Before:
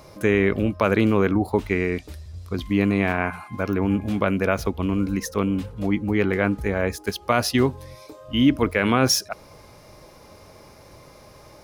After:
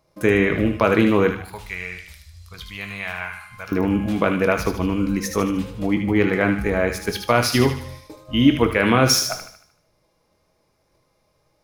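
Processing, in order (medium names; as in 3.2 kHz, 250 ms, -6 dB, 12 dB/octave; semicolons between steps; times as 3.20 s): gate -42 dBFS, range -22 dB; 1.30–3.72 s: amplifier tone stack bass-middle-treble 10-0-10; feedback echo behind a high-pass 76 ms, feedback 46%, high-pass 1.4 kHz, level -5.5 dB; simulated room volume 190 m³, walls furnished, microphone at 0.66 m; trim +2 dB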